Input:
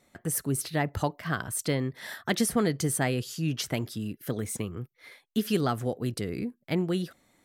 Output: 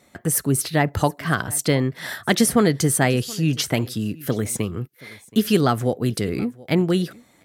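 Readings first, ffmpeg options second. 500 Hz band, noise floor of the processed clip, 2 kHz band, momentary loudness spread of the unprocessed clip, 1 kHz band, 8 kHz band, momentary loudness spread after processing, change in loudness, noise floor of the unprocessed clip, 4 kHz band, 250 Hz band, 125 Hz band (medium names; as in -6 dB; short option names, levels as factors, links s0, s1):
+8.5 dB, -57 dBFS, +8.5 dB, 9 LU, +8.5 dB, +8.5 dB, 9 LU, +8.5 dB, -70 dBFS, +8.5 dB, +8.5 dB, +8.5 dB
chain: -filter_complex "[0:a]highpass=47,asplit=2[s0][s1];[s1]aecho=0:1:726:0.075[s2];[s0][s2]amix=inputs=2:normalize=0,volume=2.66"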